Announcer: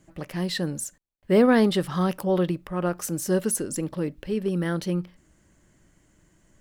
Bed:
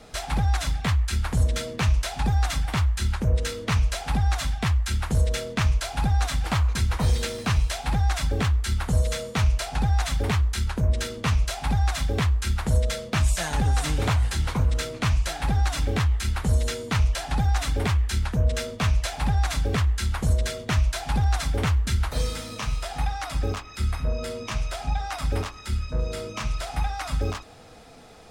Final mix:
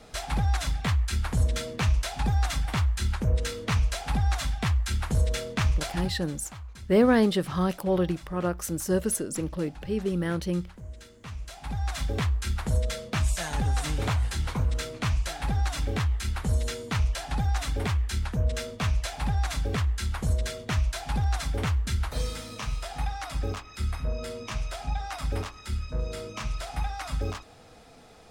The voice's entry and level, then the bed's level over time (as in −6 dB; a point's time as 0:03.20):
5.60 s, −2.0 dB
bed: 0:05.95 −2.5 dB
0:06.20 −19.5 dB
0:11.16 −19.5 dB
0:12.02 −4 dB